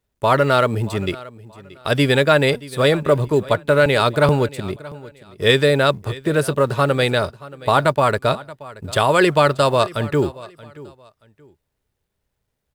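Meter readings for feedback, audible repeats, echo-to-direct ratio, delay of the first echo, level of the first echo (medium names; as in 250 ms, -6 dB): 26%, 2, -19.0 dB, 628 ms, -19.5 dB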